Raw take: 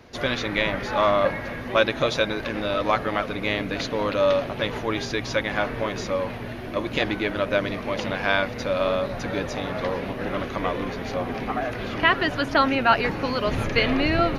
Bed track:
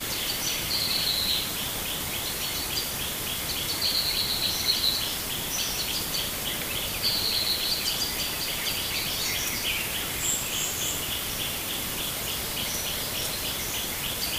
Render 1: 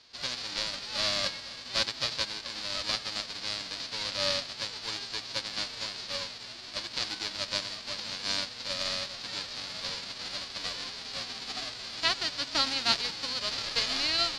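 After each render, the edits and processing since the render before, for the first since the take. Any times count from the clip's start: formants flattened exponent 0.1; four-pole ladder low-pass 5 kHz, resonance 65%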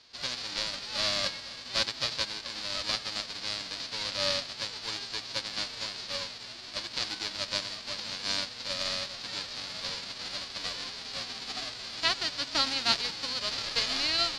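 no audible change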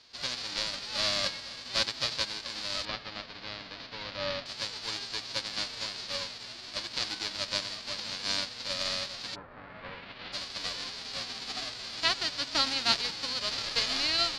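2.85–4.46 s: distance through air 250 m; 9.34–10.32 s: low-pass 1.3 kHz -> 3.6 kHz 24 dB/octave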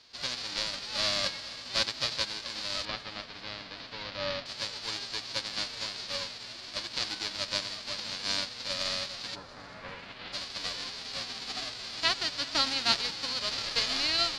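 thinning echo 394 ms, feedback 66%, level -20.5 dB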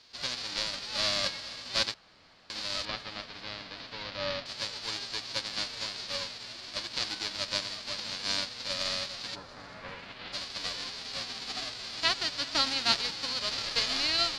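1.94–2.50 s: room tone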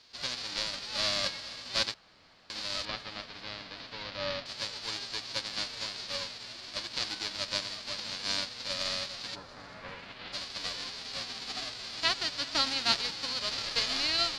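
trim -1 dB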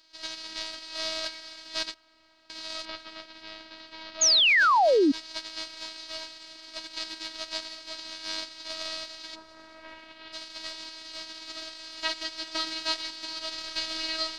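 robot voice 319 Hz; 4.21–5.12 s: painted sound fall 260–6900 Hz -20 dBFS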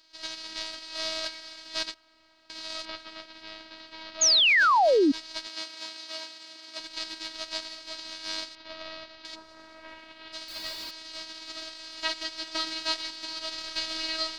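5.47–6.80 s: steep high-pass 150 Hz; 8.55–9.25 s: distance through air 260 m; 10.48–10.91 s: jump at every zero crossing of -40.5 dBFS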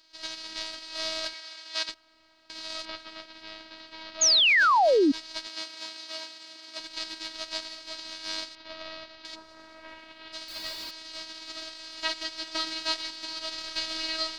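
1.33–1.89 s: frequency weighting A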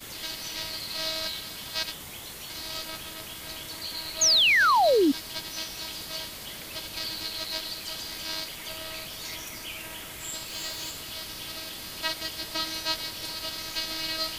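add bed track -10.5 dB

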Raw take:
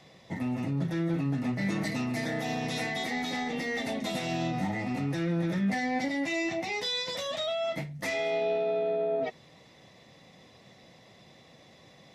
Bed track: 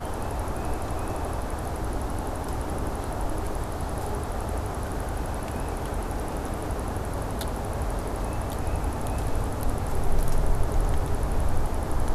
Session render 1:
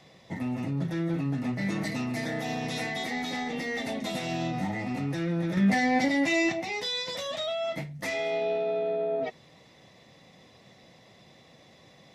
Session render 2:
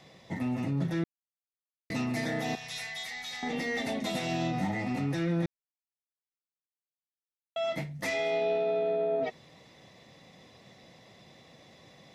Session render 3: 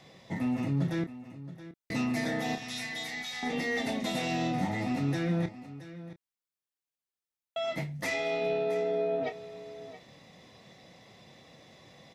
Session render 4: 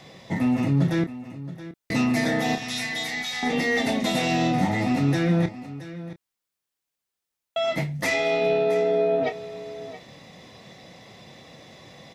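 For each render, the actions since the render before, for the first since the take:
5.57–6.52 s: gain +5.5 dB
1.04–1.90 s: mute; 2.55–3.43 s: amplifier tone stack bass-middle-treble 10-0-10; 5.46–7.56 s: mute
doubling 28 ms -10 dB; delay 673 ms -15 dB
trim +8 dB

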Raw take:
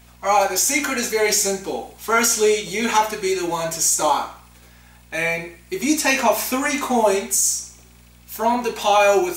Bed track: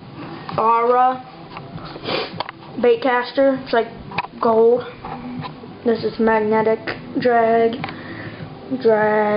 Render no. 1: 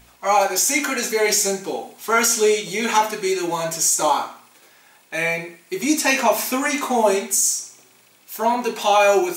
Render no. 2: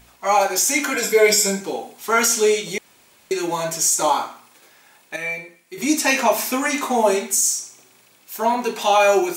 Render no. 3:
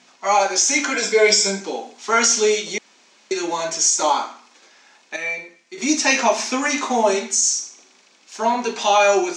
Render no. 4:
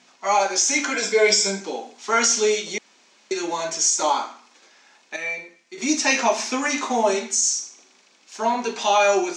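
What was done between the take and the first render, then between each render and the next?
de-hum 60 Hz, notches 4
0.93–1.61 s: rippled EQ curve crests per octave 1.7, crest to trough 13 dB; 2.78–3.31 s: room tone; 5.16–5.78 s: feedback comb 260 Hz, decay 0.21 s, mix 70%
elliptic band-pass 210–6200 Hz, stop band 40 dB; treble shelf 4.1 kHz +7 dB
trim -2.5 dB

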